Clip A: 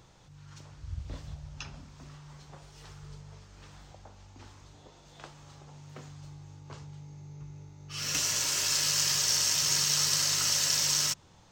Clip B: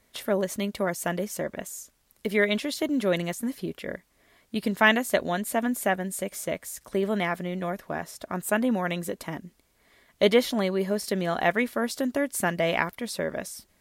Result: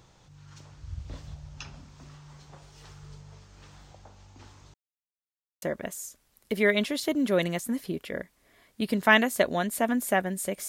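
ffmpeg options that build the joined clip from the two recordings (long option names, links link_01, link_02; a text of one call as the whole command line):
ffmpeg -i cue0.wav -i cue1.wav -filter_complex "[0:a]apad=whole_dur=10.68,atrim=end=10.68,asplit=2[link_01][link_02];[link_01]atrim=end=4.74,asetpts=PTS-STARTPTS,afade=type=out:start_time=4.736:duration=0.004:curve=hsin[link_03];[link_02]atrim=start=4.74:end=5.62,asetpts=PTS-STARTPTS,volume=0[link_04];[1:a]atrim=start=1.36:end=6.42,asetpts=PTS-STARTPTS,afade=type=in:duration=0.004:curve=hsin[link_05];[link_03][link_04][link_05]concat=n=3:v=0:a=1" out.wav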